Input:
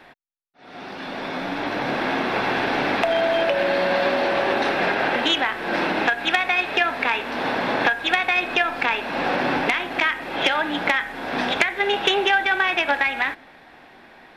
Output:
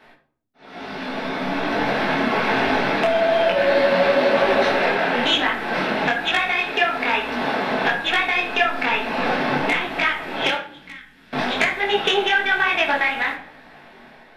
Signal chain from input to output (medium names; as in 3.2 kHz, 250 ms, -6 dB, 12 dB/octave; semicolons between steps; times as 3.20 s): 10.55–11.33 s: amplifier tone stack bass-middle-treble 6-0-2; level rider gain up to 5 dB; simulated room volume 760 m³, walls furnished, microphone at 1.5 m; detune thickener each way 38 cents